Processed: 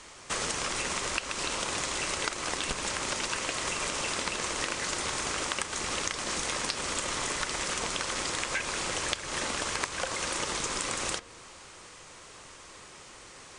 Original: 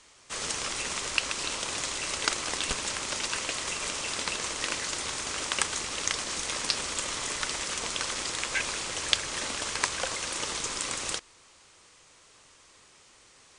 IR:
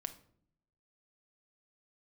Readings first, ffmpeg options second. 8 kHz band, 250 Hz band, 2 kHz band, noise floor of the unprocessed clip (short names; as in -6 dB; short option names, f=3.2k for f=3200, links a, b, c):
-1.5 dB, +3.0 dB, 0.0 dB, -58 dBFS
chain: -filter_complex "[0:a]asplit=2[a][b];[1:a]atrim=start_sample=2205,lowpass=2.6k[c];[b][c]afir=irnorm=-1:irlink=0,volume=-3dB[d];[a][d]amix=inputs=2:normalize=0,acompressor=threshold=-36dB:ratio=6,volume=7dB"